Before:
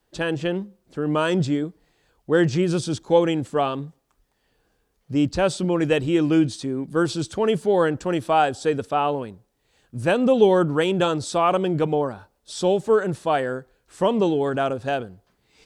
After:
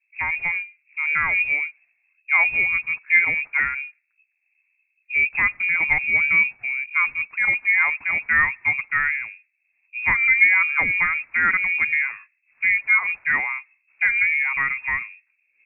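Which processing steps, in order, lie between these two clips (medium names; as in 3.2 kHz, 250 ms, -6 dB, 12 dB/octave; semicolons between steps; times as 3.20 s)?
level-controlled noise filter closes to 380 Hz, open at -16 dBFS; frequency inversion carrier 2.6 kHz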